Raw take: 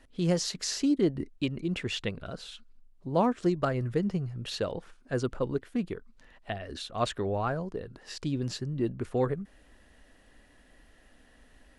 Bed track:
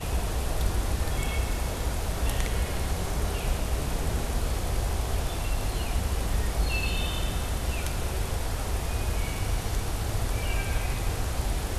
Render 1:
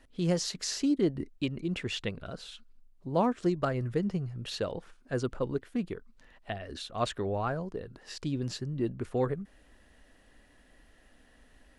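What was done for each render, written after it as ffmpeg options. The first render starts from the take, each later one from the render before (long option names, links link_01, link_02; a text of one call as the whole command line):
ffmpeg -i in.wav -af "volume=-1.5dB" out.wav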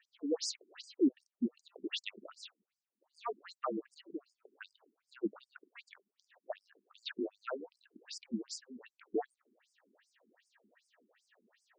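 ffmpeg -i in.wav -af "afreqshift=-49,afftfilt=real='re*between(b*sr/1024,270*pow(6800/270,0.5+0.5*sin(2*PI*2.6*pts/sr))/1.41,270*pow(6800/270,0.5+0.5*sin(2*PI*2.6*pts/sr))*1.41)':imag='im*between(b*sr/1024,270*pow(6800/270,0.5+0.5*sin(2*PI*2.6*pts/sr))/1.41,270*pow(6800/270,0.5+0.5*sin(2*PI*2.6*pts/sr))*1.41)':win_size=1024:overlap=0.75" out.wav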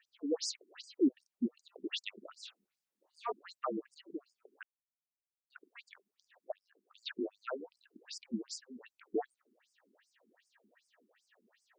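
ffmpeg -i in.wav -filter_complex "[0:a]asettb=1/sr,asplit=3[link_01][link_02][link_03];[link_01]atrim=end=2.414[link_04];[link_02]atrim=start=2.41:end=3.32,asetpts=PTS-STARTPTS,afade=type=in:duration=0.004:curve=qsin,afade=type=out:start_time=0.906:duration=0.004:curve=qsin,asplit=2[link_05][link_06];[link_06]adelay=25,volume=-3dB[link_07];[link_05][link_07]amix=inputs=2:normalize=0,atrim=end_sample=40131[link_08];[link_03]atrim=start=3.316[link_09];[link_04][link_08]acrossfade=duration=0.004:curve1=hsin:curve2=qsin[link_10];[link_10][link_09]acrossfade=duration=0.004:curve1=qsin:curve2=hsin,asplit=4[link_11][link_12][link_13][link_14];[link_11]atrim=end=4.63,asetpts=PTS-STARTPTS,afade=type=out:start_time=4.626:duration=0.004:curve=hsin[link_15];[link_12]atrim=start=4.63:end=5.5,asetpts=PTS-STARTPTS,volume=0[link_16];[link_13]atrim=start=5.5:end=6.52,asetpts=PTS-STARTPTS,afade=type=in:duration=0.004:curve=hsin,afade=type=out:start_time=1.016:duration=0.004:curve=hsin:silence=0.141254[link_17];[link_14]atrim=start=6.52,asetpts=PTS-STARTPTS,afade=type=in:duration=0.61:curve=qsin:silence=0.141254[link_18];[link_15][link_16][link_17][link_18]concat=n=4:v=0:a=1" out.wav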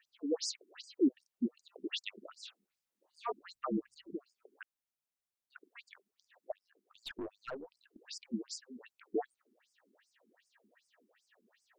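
ffmpeg -i in.wav -filter_complex "[0:a]asplit=3[link_01][link_02][link_03];[link_01]afade=type=out:start_time=3.36:duration=0.02[link_04];[link_02]asubboost=boost=8:cutoff=200,afade=type=in:start_time=3.36:duration=0.02,afade=type=out:start_time=4.15:duration=0.02[link_05];[link_03]afade=type=in:start_time=4.15:duration=0.02[link_06];[link_04][link_05][link_06]amix=inputs=3:normalize=0,asplit=3[link_07][link_08][link_09];[link_07]afade=type=out:start_time=6.51:duration=0.02[link_10];[link_08]aeval=exprs='(tanh(63.1*val(0)+0.3)-tanh(0.3))/63.1':channel_layout=same,afade=type=in:start_time=6.51:duration=0.02,afade=type=out:start_time=7.97:duration=0.02[link_11];[link_09]afade=type=in:start_time=7.97:duration=0.02[link_12];[link_10][link_11][link_12]amix=inputs=3:normalize=0" out.wav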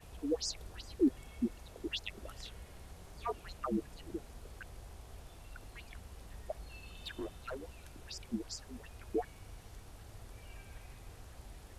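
ffmpeg -i in.wav -i bed.wav -filter_complex "[1:a]volume=-23dB[link_01];[0:a][link_01]amix=inputs=2:normalize=0" out.wav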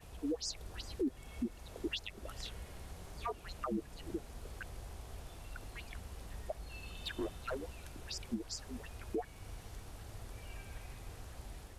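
ffmpeg -i in.wav -af "dynaudnorm=framelen=400:gausssize=3:maxgain=3dB,alimiter=level_in=4dB:limit=-24dB:level=0:latency=1:release=315,volume=-4dB" out.wav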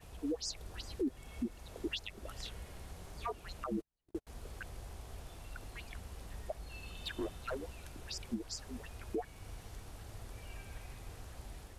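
ffmpeg -i in.wav -filter_complex "[0:a]asettb=1/sr,asplit=3[link_01][link_02][link_03];[link_01]atrim=end=3.644[link_04];[link_02]atrim=start=3.64:end=4.27,asetpts=PTS-STARTPTS,afade=type=in:duration=0.004:curve=qsin,afade=type=out:start_time=0.626:duration=0.004:curve=qsin,agate=range=-43dB:threshold=-40dB:ratio=16:release=100:detection=peak[link_05];[link_03]atrim=start=4.266[link_06];[link_04][link_05]acrossfade=duration=0.004:curve1=hsin:curve2=qsin[link_07];[link_07][link_06]acrossfade=duration=0.004:curve1=qsin:curve2=hsin" out.wav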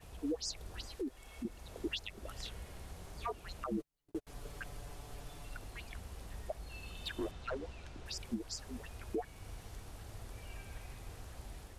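ffmpeg -i in.wav -filter_complex "[0:a]asettb=1/sr,asplit=3[link_01][link_02][link_03];[link_01]atrim=end=0.874[link_04];[link_02]atrim=start=0.87:end=1.45,asetpts=PTS-STARTPTS,afade=type=in:duration=0.004:curve=qsin,afade=type=out:start_time=0.576:duration=0.004:curve=qsin,equalizer=frequency=130:width=0.54:gain=-10.5[link_05];[link_03]atrim=start=1.446[link_06];[link_04][link_05]acrossfade=duration=0.004:curve1=hsin:curve2=qsin[link_07];[link_07][link_06]acrossfade=duration=0.004:curve1=qsin:curve2=hsin,asettb=1/sr,asplit=3[link_08][link_09][link_10];[link_08]atrim=end=3.794[link_11];[link_09]atrim=start=3.79:end=5.57,asetpts=PTS-STARTPTS,afade=type=in:duration=0.004:curve=qsin,afade=type=out:start_time=1.776:duration=0.004:curve=qsin,aecho=1:1:6.9:0.65,atrim=end_sample=78498[link_12];[link_10]atrim=start=5.566[link_13];[link_11][link_12]acrossfade=duration=0.004:curve1=hsin:curve2=qsin[link_14];[link_14][link_13]acrossfade=duration=0.004:curve1=qsin:curve2=hsin,asettb=1/sr,asplit=3[link_15][link_16][link_17];[link_15]atrim=end=7.314[link_18];[link_16]atrim=start=7.31:end=8.06,asetpts=PTS-STARTPTS,afade=type=in:duration=0.004:curve=qsin,afade=type=out:start_time=0.746:duration=0.004:curve=qsin,lowpass=5700[link_19];[link_17]atrim=start=8.056[link_20];[link_18][link_19]acrossfade=duration=0.004:curve1=hsin:curve2=qsin[link_21];[link_21][link_20]acrossfade=duration=0.004:curve1=qsin:curve2=hsin" out.wav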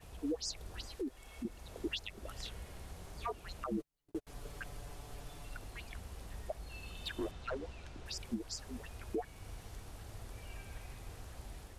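ffmpeg -i in.wav -af anull out.wav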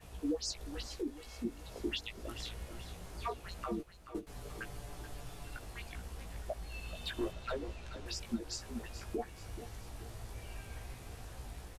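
ffmpeg -i in.wav -filter_complex "[0:a]asplit=2[link_01][link_02];[link_02]adelay=17,volume=-4dB[link_03];[link_01][link_03]amix=inputs=2:normalize=0,asplit=2[link_04][link_05];[link_05]aecho=0:1:431|862|1293|1724|2155:0.237|0.114|0.0546|0.0262|0.0126[link_06];[link_04][link_06]amix=inputs=2:normalize=0" out.wav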